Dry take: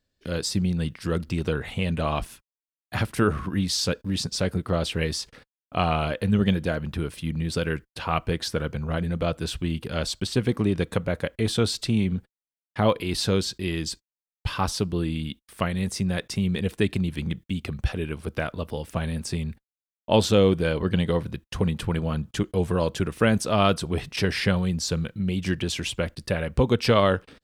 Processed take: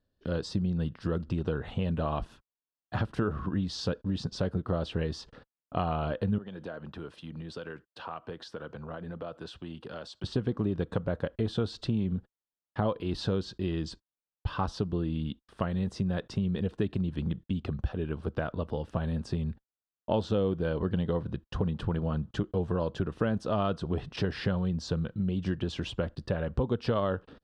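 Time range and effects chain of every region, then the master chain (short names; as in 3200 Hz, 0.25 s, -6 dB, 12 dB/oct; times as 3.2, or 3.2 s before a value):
6.38–10.24 HPF 510 Hz 6 dB/oct + compressor 5:1, threshold -34 dBFS + three-band expander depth 40%
whole clip: LPF 2800 Hz 12 dB/oct; bell 2200 Hz -14 dB 0.52 oct; compressor 3:1, threshold -27 dBFS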